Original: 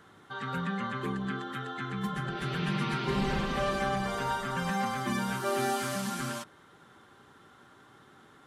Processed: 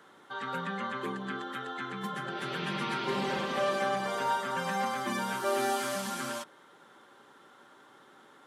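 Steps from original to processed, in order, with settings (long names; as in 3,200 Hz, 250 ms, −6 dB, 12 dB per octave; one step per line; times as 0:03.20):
high-pass filter 250 Hz 12 dB per octave
hollow resonant body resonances 550/900/3,300 Hz, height 6 dB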